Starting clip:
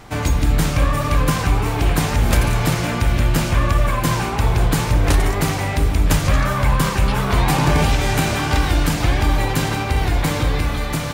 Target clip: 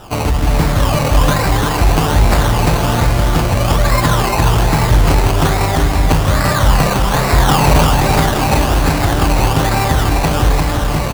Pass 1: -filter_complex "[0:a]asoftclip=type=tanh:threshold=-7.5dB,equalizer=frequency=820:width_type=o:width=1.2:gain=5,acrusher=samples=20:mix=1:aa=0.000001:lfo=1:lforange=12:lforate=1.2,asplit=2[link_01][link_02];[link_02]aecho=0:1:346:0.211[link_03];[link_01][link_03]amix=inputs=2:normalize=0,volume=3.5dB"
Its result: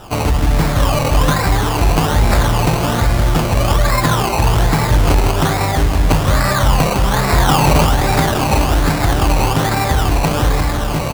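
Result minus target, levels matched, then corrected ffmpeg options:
echo-to-direct −9 dB
-filter_complex "[0:a]asoftclip=type=tanh:threshold=-7.5dB,equalizer=frequency=820:width_type=o:width=1.2:gain=5,acrusher=samples=20:mix=1:aa=0.000001:lfo=1:lforange=12:lforate=1.2,asplit=2[link_01][link_02];[link_02]aecho=0:1:346:0.596[link_03];[link_01][link_03]amix=inputs=2:normalize=0,volume=3.5dB"

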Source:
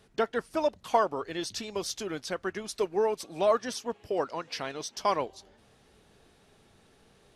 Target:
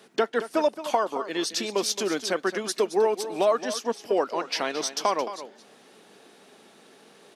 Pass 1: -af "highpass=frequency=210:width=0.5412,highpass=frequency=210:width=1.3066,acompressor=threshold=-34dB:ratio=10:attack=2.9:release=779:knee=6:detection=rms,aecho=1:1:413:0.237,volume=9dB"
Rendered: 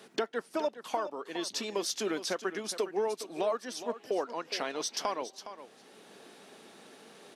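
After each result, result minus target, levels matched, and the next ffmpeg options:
echo 193 ms late; downward compressor: peak gain reduction +9 dB
-af "highpass=frequency=210:width=0.5412,highpass=frequency=210:width=1.3066,acompressor=threshold=-34dB:ratio=10:attack=2.9:release=779:knee=6:detection=rms,aecho=1:1:220:0.237,volume=9dB"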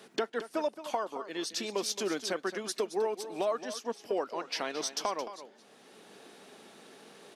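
downward compressor: peak gain reduction +9 dB
-af "highpass=frequency=210:width=0.5412,highpass=frequency=210:width=1.3066,acompressor=threshold=-24dB:ratio=10:attack=2.9:release=779:knee=6:detection=rms,aecho=1:1:220:0.237,volume=9dB"

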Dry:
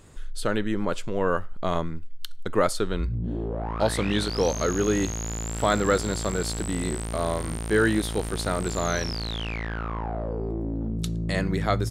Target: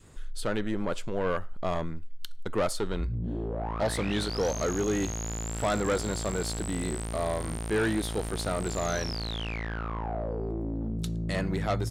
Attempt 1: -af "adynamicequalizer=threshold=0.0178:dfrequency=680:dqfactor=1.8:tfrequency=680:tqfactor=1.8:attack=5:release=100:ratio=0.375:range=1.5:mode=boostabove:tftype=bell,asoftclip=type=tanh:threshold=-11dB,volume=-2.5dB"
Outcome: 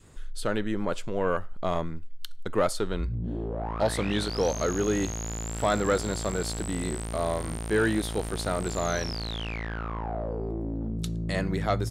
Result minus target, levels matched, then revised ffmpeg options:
soft clipping: distortion −9 dB
-af "adynamicequalizer=threshold=0.0178:dfrequency=680:dqfactor=1.8:tfrequency=680:tqfactor=1.8:attack=5:release=100:ratio=0.375:range=1.5:mode=boostabove:tftype=bell,asoftclip=type=tanh:threshold=-18.5dB,volume=-2.5dB"

